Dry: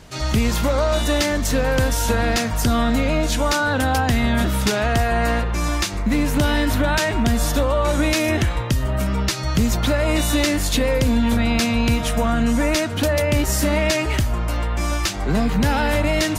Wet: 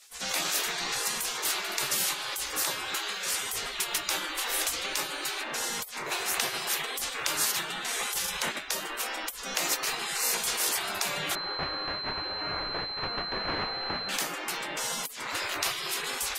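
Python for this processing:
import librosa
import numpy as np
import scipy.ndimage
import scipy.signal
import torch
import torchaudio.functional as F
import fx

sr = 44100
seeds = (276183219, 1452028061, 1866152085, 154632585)

y = fx.spec_gate(x, sr, threshold_db=-25, keep='weak')
y = fx.pwm(y, sr, carrier_hz=4100.0, at=(11.35, 14.09))
y = y * librosa.db_to_amplitude(2.5)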